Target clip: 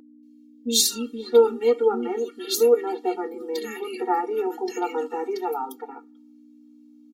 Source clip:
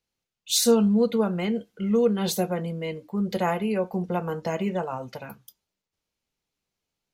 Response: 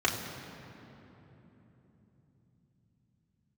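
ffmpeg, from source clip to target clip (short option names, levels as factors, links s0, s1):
-filter_complex "[0:a]acrossover=split=270|1800[s0][s1][s2];[s2]adelay=230[s3];[s1]adelay=670[s4];[s0][s4][s3]amix=inputs=3:normalize=0,aeval=exprs='val(0)+0.00708*(sin(2*PI*60*n/s)+sin(2*PI*2*60*n/s)/2+sin(2*PI*3*60*n/s)/3+sin(2*PI*4*60*n/s)/4+sin(2*PI*5*60*n/s)/5)':c=same,afftfilt=real='re*eq(mod(floor(b*sr/1024/240),2),1)':imag='im*eq(mod(floor(b*sr/1024/240),2),1)':win_size=1024:overlap=0.75,volume=2.24"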